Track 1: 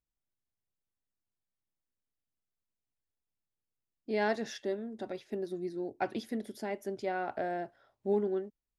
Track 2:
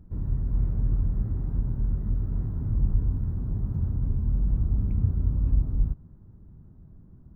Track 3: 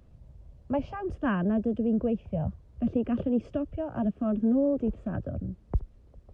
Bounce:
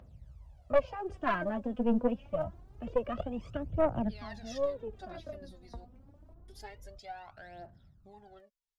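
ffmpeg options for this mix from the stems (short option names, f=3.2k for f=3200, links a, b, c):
-filter_complex "[0:a]alimiter=level_in=3.5dB:limit=-24dB:level=0:latency=1:release=286,volume=-3.5dB,equalizer=f=4.6k:w=0.71:g=8.5,volume=-8.5dB,asplit=3[a][b][c];[a]atrim=end=5.85,asetpts=PTS-STARTPTS,afade=t=out:st=5.846:d=0.004:c=hsin[d];[b]atrim=start=5.85:end=6.48,asetpts=PTS-STARTPTS,volume=0[e];[c]atrim=start=6.48,asetpts=PTS-STARTPTS,afade=t=in:d=0.004:c=hsin[f];[d][e][f]concat=n=3:v=0:a=1,asplit=2[g][h];[1:a]highpass=f=81:p=1,acompressor=threshold=-30dB:ratio=6,asoftclip=type=tanh:threshold=-35.5dB,adelay=1050,volume=-7dB[i];[2:a]highpass=f=44:w=0.5412,highpass=f=44:w=1.3066,volume=1dB[j];[h]apad=whole_len=279162[k];[j][k]sidechaincompress=threshold=-49dB:ratio=5:attack=9:release=1400[l];[g][i][l]amix=inputs=3:normalize=0,lowshelf=f=500:t=q:w=1.5:g=-6,aphaser=in_gain=1:out_gain=1:delay=4.3:decay=0.74:speed=0.26:type=triangular,aeval=exprs='(tanh(7.94*val(0)+0.65)-tanh(0.65))/7.94':c=same"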